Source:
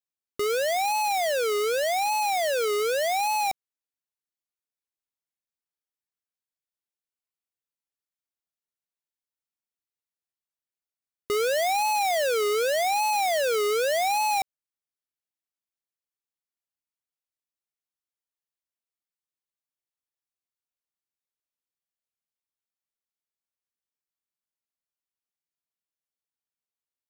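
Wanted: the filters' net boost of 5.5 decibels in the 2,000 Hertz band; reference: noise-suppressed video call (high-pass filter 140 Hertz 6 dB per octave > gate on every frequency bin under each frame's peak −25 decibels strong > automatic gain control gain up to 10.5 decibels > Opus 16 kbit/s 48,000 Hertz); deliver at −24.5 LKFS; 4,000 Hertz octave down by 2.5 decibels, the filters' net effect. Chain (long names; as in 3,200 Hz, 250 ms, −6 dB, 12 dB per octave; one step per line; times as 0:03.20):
high-pass filter 140 Hz 6 dB per octave
parametric band 2,000 Hz +8.5 dB
parametric band 4,000 Hz −6 dB
gate on every frequency bin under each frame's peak −25 dB strong
automatic gain control gain up to 10.5 dB
level −8.5 dB
Opus 16 kbit/s 48,000 Hz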